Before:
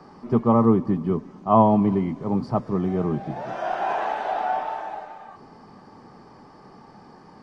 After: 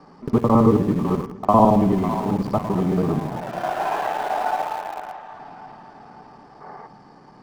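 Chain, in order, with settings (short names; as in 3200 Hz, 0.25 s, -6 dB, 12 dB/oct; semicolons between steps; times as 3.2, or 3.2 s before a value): local time reversal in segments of 55 ms; on a send at -16 dB: reverb RT60 1.7 s, pre-delay 7 ms; on the sum: flange 0.32 Hz, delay 4 ms, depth 5.6 ms, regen -83%; split-band echo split 650 Hz, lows 0.105 s, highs 0.55 s, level -10 dB; spectral gain 6.61–6.87, 370–2300 Hz +9 dB; in parallel at -8 dB: sample gate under -30.5 dBFS; on the sum: gain +3.5 dB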